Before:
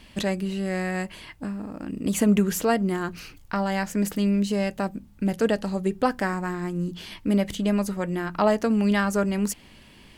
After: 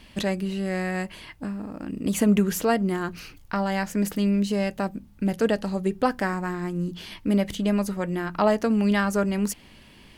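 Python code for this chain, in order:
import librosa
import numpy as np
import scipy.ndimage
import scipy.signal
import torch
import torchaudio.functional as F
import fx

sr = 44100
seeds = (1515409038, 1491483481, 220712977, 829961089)

y = fx.peak_eq(x, sr, hz=7600.0, db=-2.5, octaves=0.36)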